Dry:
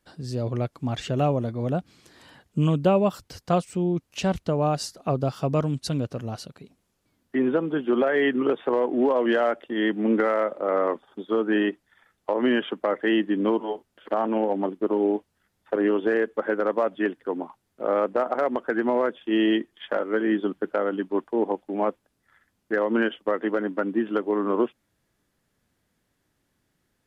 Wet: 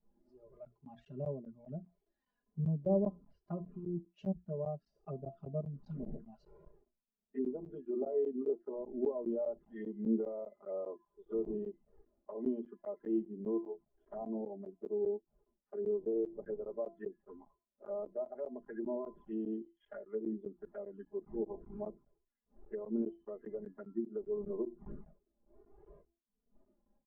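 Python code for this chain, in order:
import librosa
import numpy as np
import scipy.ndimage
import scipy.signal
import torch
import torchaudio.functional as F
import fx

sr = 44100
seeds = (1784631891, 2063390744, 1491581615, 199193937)

y = fx.fade_in_head(x, sr, length_s=0.82)
y = fx.dmg_wind(y, sr, seeds[0], corner_hz=450.0, level_db=-40.0)
y = fx.high_shelf(y, sr, hz=3600.0, db=-6.5)
y = fx.hum_notches(y, sr, base_hz=60, count=6)
y = fx.comb_fb(y, sr, f0_hz=340.0, decay_s=0.56, harmonics='all', damping=0.0, mix_pct=70)
y = fx.env_flanger(y, sr, rest_ms=4.7, full_db=-30.0)
y = y + 0.89 * np.pad(y, (int(4.9 * sr / 1000.0), 0))[:len(y)]
y = fx.env_lowpass_down(y, sr, base_hz=1200.0, full_db=-29.5)
y = fx.buffer_crackle(y, sr, first_s=0.65, period_s=0.2, block=512, kind='zero')
y = fx.spectral_expand(y, sr, expansion=1.5)
y = F.gain(torch.from_numpy(y), -3.5).numpy()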